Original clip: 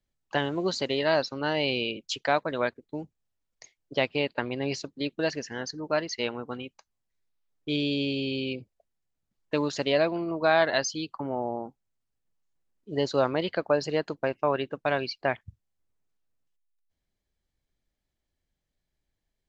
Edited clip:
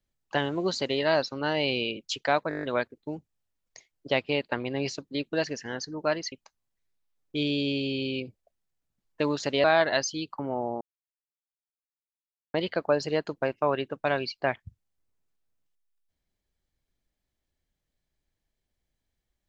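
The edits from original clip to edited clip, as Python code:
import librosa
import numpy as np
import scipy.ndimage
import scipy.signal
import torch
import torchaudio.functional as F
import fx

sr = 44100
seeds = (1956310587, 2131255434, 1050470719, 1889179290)

y = fx.edit(x, sr, fx.stutter(start_s=2.49, slice_s=0.02, count=8),
    fx.cut(start_s=6.18, length_s=0.47),
    fx.cut(start_s=9.97, length_s=0.48),
    fx.silence(start_s=11.62, length_s=1.73), tone=tone)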